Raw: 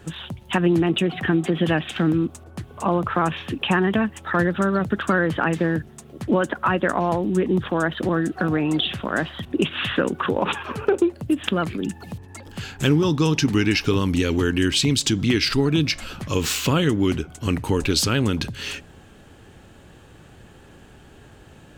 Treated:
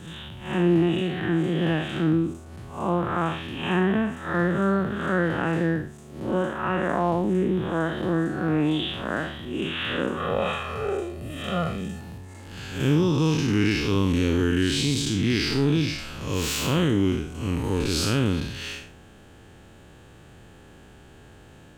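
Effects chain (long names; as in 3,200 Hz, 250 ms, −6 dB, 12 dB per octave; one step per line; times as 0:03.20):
spectrum smeared in time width 161 ms
0:10.17–0:12.01: comb filter 1.6 ms, depth 80%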